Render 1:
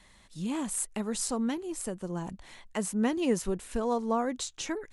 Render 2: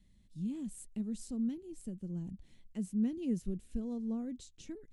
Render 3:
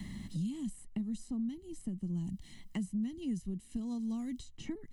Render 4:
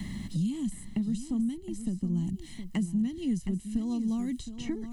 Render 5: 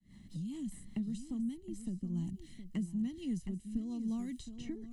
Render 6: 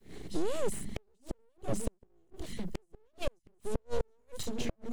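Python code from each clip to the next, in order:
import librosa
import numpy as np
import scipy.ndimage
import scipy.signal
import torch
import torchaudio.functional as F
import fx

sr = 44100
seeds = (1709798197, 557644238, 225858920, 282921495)

y1 = fx.curve_eq(x, sr, hz=(220.0, 1000.0, 3000.0), db=(0, -28, -16))
y1 = F.gain(torch.from_numpy(y1), -2.5).numpy()
y2 = y1 + 0.65 * np.pad(y1, (int(1.0 * sr / 1000.0), 0))[:len(y1)]
y2 = fx.band_squash(y2, sr, depth_pct=100)
y2 = F.gain(torch.from_numpy(y2), -2.0).numpy()
y3 = y2 + 10.0 ** (-10.5 / 20.0) * np.pad(y2, (int(717 * sr / 1000.0), 0))[:len(y2)]
y3 = F.gain(torch.from_numpy(y3), 6.5).numpy()
y4 = fx.fade_in_head(y3, sr, length_s=0.61)
y4 = fx.rotary_switch(y4, sr, hz=5.0, then_hz=0.9, switch_at_s=1.42)
y4 = F.gain(torch.from_numpy(y4), -6.0).numpy()
y5 = np.abs(y4)
y5 = fx.gate_flip(y5, sr, shuts_db=-32.0, range_db=-41)
y5 = F.gain(torch.from_numpy(y5), 13.0).numpy()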